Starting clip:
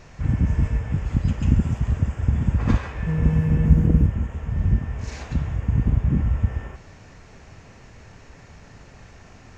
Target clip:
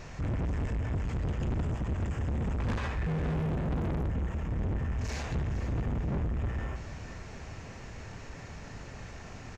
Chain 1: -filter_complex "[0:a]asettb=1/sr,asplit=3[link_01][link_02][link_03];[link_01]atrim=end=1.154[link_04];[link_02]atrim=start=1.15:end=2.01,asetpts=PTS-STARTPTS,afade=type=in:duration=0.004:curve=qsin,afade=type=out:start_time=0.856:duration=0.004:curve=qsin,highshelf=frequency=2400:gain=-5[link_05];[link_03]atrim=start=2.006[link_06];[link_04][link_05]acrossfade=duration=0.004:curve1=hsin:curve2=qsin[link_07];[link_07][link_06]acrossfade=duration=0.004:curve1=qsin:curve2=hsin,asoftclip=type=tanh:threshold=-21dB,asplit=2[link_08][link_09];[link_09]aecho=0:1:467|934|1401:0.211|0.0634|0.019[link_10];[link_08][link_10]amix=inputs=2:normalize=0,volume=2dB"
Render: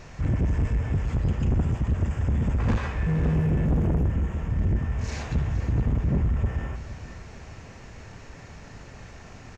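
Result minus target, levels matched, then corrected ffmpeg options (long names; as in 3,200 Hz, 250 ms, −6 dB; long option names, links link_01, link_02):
soft clipping: distortion −5 dB
-filter_complex "[0:a]asettb=1/sr,asplit=3[link_01][link_02][link_03];[link_01]atrim=end=1.154[link_04];[link_02]atrim=start=1.15:end=2.01,asetpts=PTS-STARTPTS,afade=type=in:duration=0.004:curve=qsin,afade=type=out:start_time=0.856:duration=0.004:curve=qsin,highshelf=frequency=2400:gain=-5[link_05];[link_03]atrim=start=2.006[link_06];[link_04][link_05]acrossfade=duration=0.004:curve1=hsin:curve2=qsin[link_07];[link_07][link_06]acrossfade=duration=0.004:curve1=qsin:curve2=hsin,asoftclip=type=tanh:threshold=-31dB,asplit=2[link_08][link_09];[link_09]aecho=0:1:467|934|1401:0.211|0.0634|0.019[link_10];[link_08][link_10]amix=inputs=2:normalize=0,volume=2dB"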